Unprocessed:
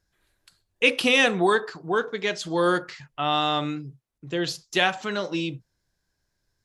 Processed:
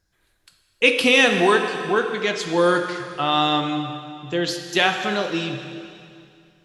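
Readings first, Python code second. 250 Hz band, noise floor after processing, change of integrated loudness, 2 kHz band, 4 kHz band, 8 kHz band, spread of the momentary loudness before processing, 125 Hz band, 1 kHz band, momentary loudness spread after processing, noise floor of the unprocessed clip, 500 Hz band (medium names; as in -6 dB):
+4.0 dB, -66 dBFS, +4.0 dB, +4.0 dB, +4.0 dB, +4.0 dB, 14 LU, +3.0 dB, +4.0 dB, 14 LU, -77 dBFS, +4.5 dB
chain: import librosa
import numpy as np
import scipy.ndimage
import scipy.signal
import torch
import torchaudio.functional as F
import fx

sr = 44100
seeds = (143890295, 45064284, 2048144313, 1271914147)

y = fx.rev_plate(x, sr, seeds[0], rt60_s=2.4, hf_ratio=1.0, predelay_ms=0, drr_db=5.5)
y = F.gain(torch.from_numpy(y), 3.0).numpy()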